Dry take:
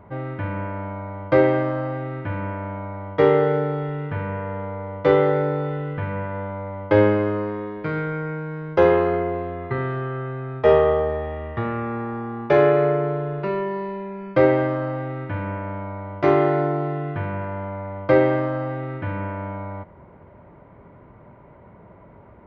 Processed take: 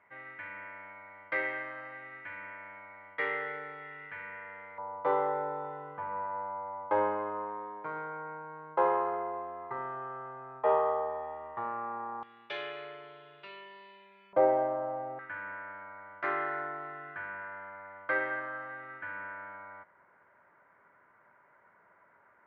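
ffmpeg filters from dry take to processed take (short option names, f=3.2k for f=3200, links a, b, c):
-af "asetnsamples=n=441:p=0,asendcmd='4.78 bandpass f 950;12.23 bandpass f 3300;14.33 bandpass f 740;15.19 bandpass f 1600',bandpass=f=2k:t=q:w=3.6:csg=0"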